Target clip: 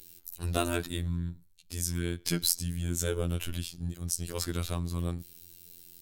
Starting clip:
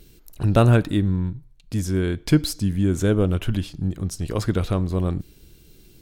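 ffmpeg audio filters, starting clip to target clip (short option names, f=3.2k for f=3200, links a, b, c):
-af "crystalizer=i=5:c=0,afftfilt=real='hypot(re,im)*cos(PI*b)':imag='0':win_size=2048:overlap=0.75,volume=-8.5dB"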